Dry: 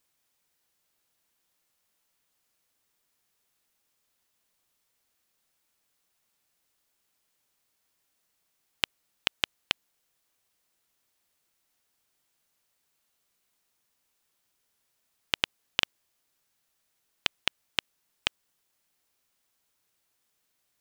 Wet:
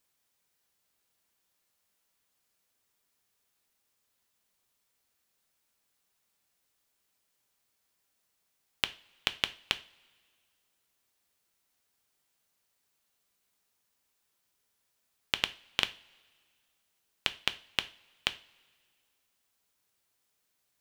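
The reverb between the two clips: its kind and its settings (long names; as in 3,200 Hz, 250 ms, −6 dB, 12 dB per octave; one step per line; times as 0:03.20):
coupled-rooms reverb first 0.33 s, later 2 s, from −22 dB, DRR 10.5 dB
level −2 dB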